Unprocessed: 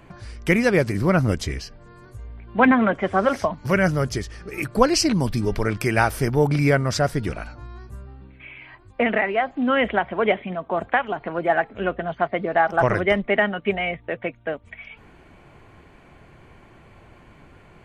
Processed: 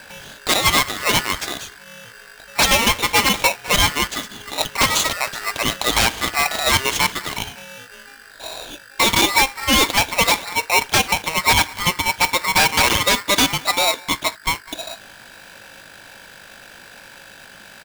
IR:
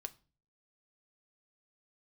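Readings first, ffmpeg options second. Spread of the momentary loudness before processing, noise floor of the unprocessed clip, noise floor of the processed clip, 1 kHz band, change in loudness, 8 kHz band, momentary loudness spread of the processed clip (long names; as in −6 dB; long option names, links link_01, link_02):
20 LU, −51 dBFS, −43 dBFS, +4.0 dB, +4.5 dB, +14.5 dB, 16 LU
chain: -filter_complex "[0:a]acrossover=split=540 3900:gain=0.0794 1 0.251[link_01][link_02][link_03];[link_01][link_02][link_03]amix=inputs=3:normalize=0,bandreject=frequency=89.79:width_type=h:width=4,bandreject=frequency=179.58:width_type=h:width=4,bandreject=frequency=269.37:width_type=h:width=4,bandreject=frequency=359.16:width_type=h:width=4,aresample=16000,aeval=exprs='0.119*(abs(mod(val(0)/0.119+3,4)-2)-1)':channel_layout=same,aresample=44100,aeval=exprs='val(0)+0.00282*(sin(2*PI*50*n/s)+sin(2*PI*2*50*n/s)/2+sin(2*PI*3*50*n/s)/3+sin(2*PI*4*50*n/s)/4+sin(2*PI*5*50*n/s)/5)':channel_layout=same,asplit=2[link_04][link_05];[link_05]adelay=204,lowpass=frequency=970:poles=1,volume=-19dB,asplit=2[link_06][link_07];[link_07]adelay=204,lowpass=frequency=970:poles=1,volume=0.34,asplit=2[link_08][link_09];[link_09]adelay=204,lowpass=frequency=970:poles=1,volume=0.34[link_10];[link_04][link_06][link_08][link_10]amix=inputs=4:normalize=0,asplit=2[link_11][link_12];[1:a]atrim=start_sample=2205,atrim=end_sample=3969[link_13];[link_12][link_13]afir=irnorm=-1:irlink=0,volume=10.5dB[link_14];[link_11][link_14]amix=inputs=2:normalize=0,aeval=exprs='val(0)*sgn(sin(2*PI*1600*n/s))':channel_layout=same"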